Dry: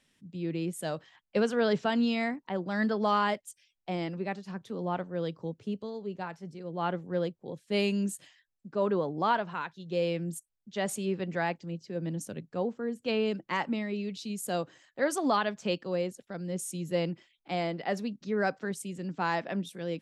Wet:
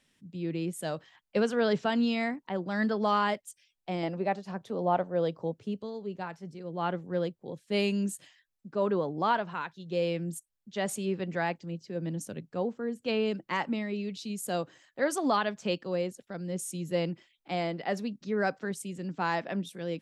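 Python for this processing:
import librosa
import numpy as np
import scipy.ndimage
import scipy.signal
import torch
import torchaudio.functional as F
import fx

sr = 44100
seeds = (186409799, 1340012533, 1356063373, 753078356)

y = fx.peak_eq(x, sr, hz=670.0, db=9.0, octaves=1.1, at=(4.03, 5.58))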